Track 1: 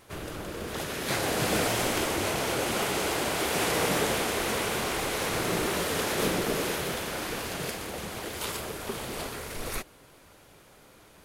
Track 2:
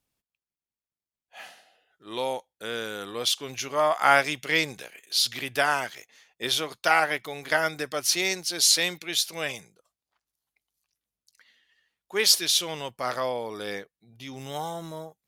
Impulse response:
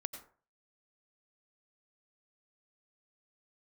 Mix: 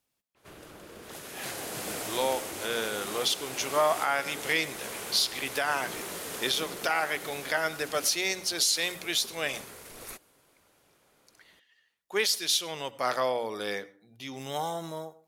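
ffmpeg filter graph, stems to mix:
-filter_complex "[0:a]adynamicequalizer=threshold=0.00501:dfrequency=5600:dqfactor=0.7:tfrequency=5600:tqfactor=0.7:attack=5:release=100:ratio=0.375:range=3.5:mode=boostabove:tftype=highshelf,adelay=350,volume=0.316[s0];[1:a]bandreject=f=60:t=h:w=6,bandreject=f=120:t=h:w=6,bandreject=f=180:t=h:w=6,bandreject=f=240:t=h:w=6,bandreject=f=300:t=h:w=6,volume=0.841,asplit=2[s1][s2];[s2]volume=0.422[s3];[2:a]atrim=start_sample=2205[s4];[s3][s4]afir=irnorm=-1:irlink=0[s5];[s0][s1][s5]amix=inputs=3:normalize=0,lowshelf=f=110:g=-9.5,alimiter=limit=0.188:level=0:latency=1:release=399"

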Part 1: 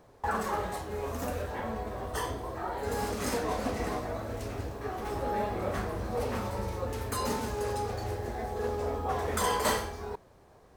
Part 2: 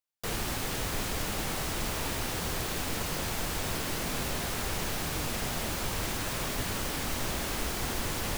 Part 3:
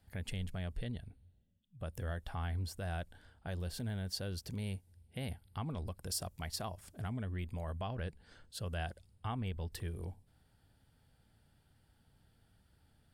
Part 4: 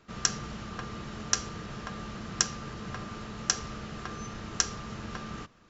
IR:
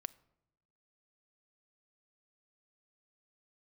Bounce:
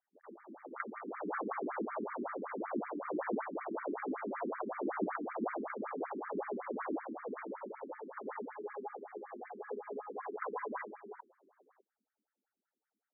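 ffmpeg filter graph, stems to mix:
-filter_complex "[0:a]adelay=1050,volume=0.631[s0];[1:a]lowpass=1000,dynaudnorm=f=140:g=21:m=4.47,volume=0.841[s1];[2:a]volume=0.316,asplit=2[s2][s3];[3:a]acrusher=bits=5:mix=0:aa=0.000001,bandreject=f=1700:w=5.5,adelay=550,volume=1[s4];[s3]apad=whole_len=369513[s5];[s1][s5]sidechaincompress=threshold=0.00158:ratio=3:attack=16:release=251[s6];[s0][s6][s2][s4]amix=inputs=4:normalize=0,acrossover=split=320|3000[s7][s8][s9];[s8]acompressor=threshold=0.0316:ratio=6[s10];[s7][s10][s9]amix=inputs=3:normalize=0,afftfilt=real='re*between(b*sr/1024,270*pow(1700/270,0.5+0.5*sin(2*PI*5.3*pts/sr))/1.41,270*pow(1700/270,0.5+0.5*sin(2*PI*5.3*pts/sr))*1.41)':imag='im*between(b*sr/1024,270*pow(1700/270,0.5+0.5*sin(2*PI*5.3*pts/sr))/1.41,270*pow(1700/270,0.5+0.5*sin(2*PI*5.3*pts/sr))*1.41)':win_size=1024:overlap=0.75"

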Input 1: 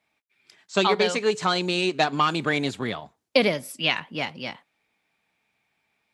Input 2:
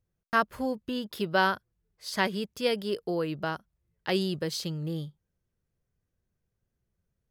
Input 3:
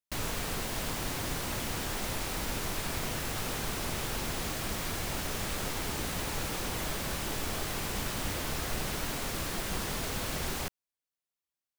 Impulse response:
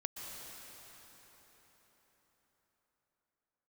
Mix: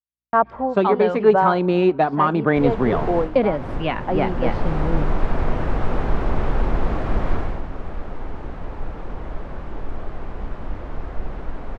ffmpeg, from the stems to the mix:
-filter_complex "[0:a]volume=1.41[s0];[1:a]equalizer=f=830:t=o:w=1.1:g=12,aeval=exprs='val(0)+0.002*(sin(2*PI*60*n/s)+sin(2*PI*2*60*n/s)/2+sin(2*PI*3*60*n/s)/3+sin(2*PI*4*60*n/s)/4+sin(2*PI*5*60*n/s)/5)':c=same,volume=0.531,asplit=2[s1][s2];[s2]volume=0.112[s3];[2:a]asubboost=boost=3.5:cutoff=55,adelay=2450,volume=0.944,afade=t=out:st=7.33:d=0.29:silence=0.298538,asplit=2[s4][s5];[s5]volume=0.316[s6];[3:a]atrim=start_sample=2205[s7];[s3][s6]amix=inputs=2:normalize=0[s8];[s8][s7]afir=irnorm=-1:irlink=0[s9];[s0][s1][s4][s9]amix=inputs=4:normalize=0,dynaudnorm=f=110:g=3:m=3.98,lowpass=1100,agate=range=0.00355:threshold=0.01:ratio=16:detection=peak"

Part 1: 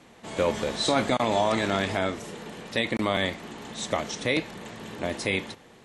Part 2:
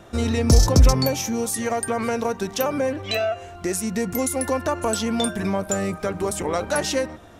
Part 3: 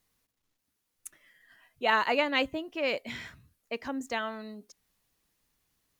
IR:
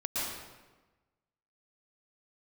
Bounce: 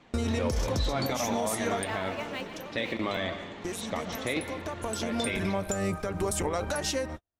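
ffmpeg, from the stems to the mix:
-filter_complex "[0:a]lowpass=4500,acontrast=82,flanger=delay=0.8:depth=2.3:regen=67:speed=1.5:shape=triangular,volume=0.422,asplit=2[s0][s1];[s1]volume=0.178[s2];[1:a]agate=range=0.00355:threshold=0.02:ratio=16:detection=peak,asubboost=boost=2:cutoff=110,acompressor=threshold=0.0631:ratio=6,volume=1[s3];[2:a]acontrast=67,aeval=exprs='sgn(val(0))*max(abs(val(0))-0.0224,0)':c=same,volume=0.133,asplit=3[s4][s5][s6];[s5]volume=0.237[s7];[s6]apad=whole_len=326159[s8];[s3][s8]sidechaincompress=threshold=0.00251:ratio=8:attack=16:release=1240[s9];[3:a]atrim=start_sample=2205[s10];[s2][s7]amix=inputs=2:normalize=0[s11];[s11][s10]afir=irnorm=-1:irlink=0[s12];[s0][s9][s4][s12]amix=inputs=4:normalize=0,alimiter=limit=0.112:level=0:latency=1:release=136"

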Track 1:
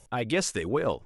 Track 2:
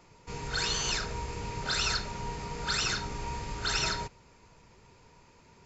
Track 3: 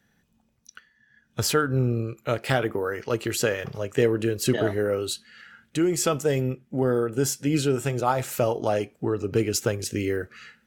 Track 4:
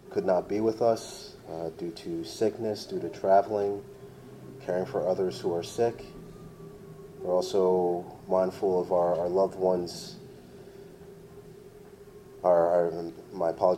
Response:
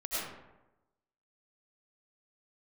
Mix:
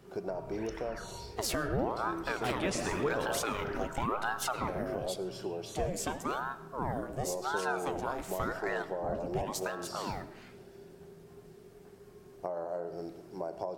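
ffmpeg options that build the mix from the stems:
-filter_complex "[0:a]aeval=exprs='val(0)*gte(abs(val(0)),0.00355)':c=same,adelay=2300,volume=0.596,asplit=2[s0][s1];[s1]volume=0.447[s2];[1:a]lowpass=f=2000:w=0.5412,lowpass=f=2000:w=1.3066,asplit=2[s3][s4];[s4]afreqshift=-1.4[s5];[s3][s5]amix=inputs=2:normalize=1,volume=0.398[s6];[2:a]bandreject=f=117.4:t=h:w=4,bandreject=f=234.8:t=h:w=4,bandreject=f=352.2:t=h:w=4,bandreject=f=469.6:t=h:w=4,bandreject=f=587:t=h:w=4,bandreject=f=704.4:t=h:w=4,bandreject=f=821.8:t=h:w=4,bandreject=f=939.2:t=h:w=4,bandreject=f=1056.6:t=h:w=4,bandreject=f=1174:t=h:w=4,bandreject=f=1291.4:t=h:w=4,bandreject=f=1408.8:t=h:w=4,bandreject=f=1526.2:t=h:w=4,bandreject=f=1643.6:t=h:w=4,bandreject=f=1761:t=h:w=4,bandreject=f=1878.4:t=h:w=4,bandreject=f=1995.8:t=h:w=4,bandreject=f=2113.2:t=h:w=4,bandreject=f=2230.6:t=h:w=4,bandreject=f=2348:t=h:w=4,bandreject=f=2465.4:t=h:w=4,bandreject=f=2582.8:t=h:w=4,bandreject=f=2700.2:t=h:w=4,bandreject=f=2817.6:t=h:w=4,bandreject=f=2935:t=h:w=4,bandreject=f=3052.4:t=h:w=4,bandreject=f=3169.8:t=h:w=4,bandreject=f=3287.2:t=h:w=4,bandreject=f=3404.6:t=h:w=4,aeval=exprs='val(0)*sin(2*PI*680*n/s+680*0.8/0.92*sin(2*PI*0.92*n/s))':c=same,volume=0.891,afade=t=out:st=4.23:d=0.62:silence=0.398107,asplit=2[s7][s8];[s8]volume=0.1[s9];[3:a]acompressor=threshold=0.0398:ratio=10,volume=0.531,asplit=2[s10][s11];[s11]volume=0.126[s12];[4:a]atrim=start_sample=2205[s13];[s2][s9][s12]amix=inputs=3:normalize=0[s14];[s14][s13]afir=irnorm=-1:irlink=0[s15];[s0][s6][s7][s10][s15]amix=inputs=5:normalize=0,alimiter=limit=0.0891:level=0:latency=1:release=263"

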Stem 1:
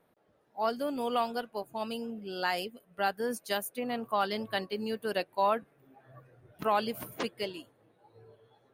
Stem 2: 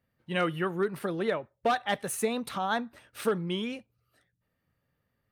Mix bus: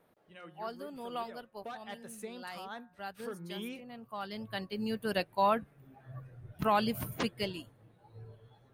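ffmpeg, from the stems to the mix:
-filter_complex "[0:a]asubboost=boost=4.5:cutoff=170,volume=1.12[s0];[1:a]bandreject=f=180:t=h:w=4,bandreject=f=360:t=h:w=4,bandreject=f=540:t=h:w=4,bandreject=f=720:t=h:w=4,bandreject=f=900:t=h:w=4,bandreject=f=1080:t=h:w=4,bandreject=f=1260:t=h:w=4,bandreject=f=1440:t=h:w=4,bandreject=f=1620:t=h:w=4,bandreject=f=1800:t=h:w=4,volume=0.596,afade=t=in:st=1.22:d=0.79:silence=0.446684,afade=t=in:st=3.3:d=0.59:silence=0.298538,asplit=2[s1][s2];[s2]apad=whole_len=385412[s3];[s0][s3]sidechaincompress=threshold=0.001:ratio=3:attack=5.3:release=868[s4];[s4][s1]amix=inputs=2:normalize=0"

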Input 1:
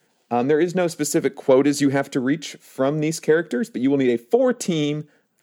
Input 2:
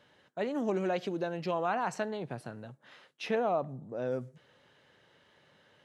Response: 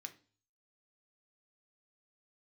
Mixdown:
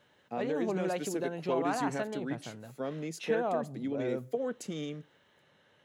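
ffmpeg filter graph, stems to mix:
-filter_complex "[0:a]volume=0.158[s0];[1:a]bandreject=f=4800:w=6.5,volume=0.794[s1];[s0][s1]amix=inputs=2:normalize=0"

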